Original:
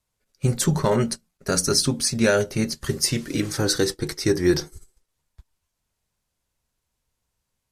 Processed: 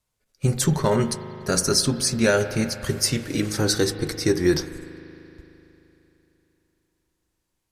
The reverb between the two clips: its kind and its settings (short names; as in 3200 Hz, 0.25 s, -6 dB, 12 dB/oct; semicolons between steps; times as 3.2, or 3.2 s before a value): spring tank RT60 3.4 s, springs 38 ms, chirp 60 ms, DRR 9.5 dB